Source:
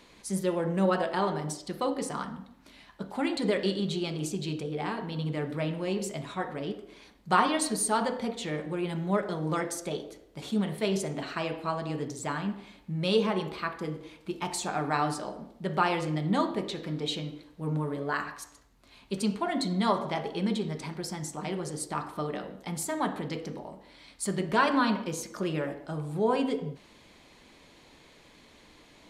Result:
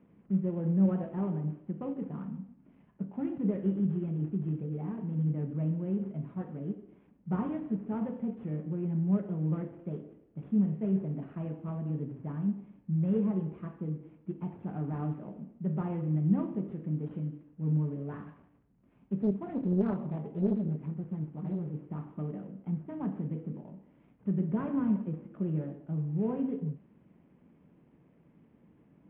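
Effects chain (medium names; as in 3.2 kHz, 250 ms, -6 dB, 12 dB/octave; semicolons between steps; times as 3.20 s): CVSD coder 16 kbps; band-pass filter 170 Hz, Q 1.9; 19.18–21.67 s: loudspeaker Doppler distortion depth 0.94 ms; trim +4.5 dB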